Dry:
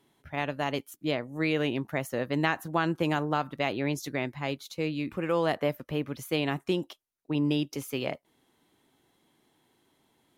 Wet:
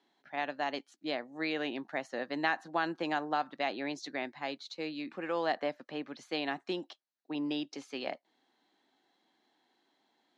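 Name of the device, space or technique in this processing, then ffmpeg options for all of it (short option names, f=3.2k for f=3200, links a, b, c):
television speaker: -af "highpass=f=220:w=0.5412,highpass=f=220:w=1.3066,equalizer=f=430:t=q:w=4:g=-3,equalizer=f=760:t=q:w=4:g=7,equalizer=f=1.7k:t=q:w=4:g=6,equalizer=f=4.2k:t=q:w=4:g=8,lowpass=f=6.6k:w=0.5412,lowpass=f=6.6k:w=1.3066,volume=-6.5dB"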